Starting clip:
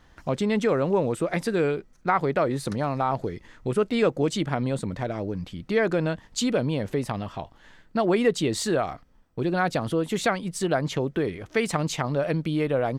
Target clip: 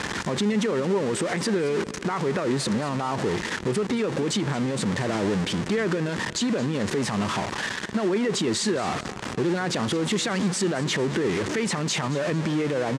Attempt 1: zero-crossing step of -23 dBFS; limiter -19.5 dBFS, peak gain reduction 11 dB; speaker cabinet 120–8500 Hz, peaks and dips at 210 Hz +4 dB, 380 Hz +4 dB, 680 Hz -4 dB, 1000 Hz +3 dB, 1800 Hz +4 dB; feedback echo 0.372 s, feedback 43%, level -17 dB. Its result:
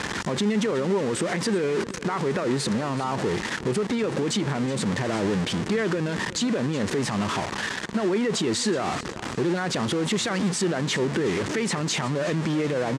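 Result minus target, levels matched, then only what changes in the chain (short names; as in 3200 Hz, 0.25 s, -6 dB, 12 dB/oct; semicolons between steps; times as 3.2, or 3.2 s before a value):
echo 0.149 s late
change: feedback echo 0.223 s, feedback 43%, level -17 dB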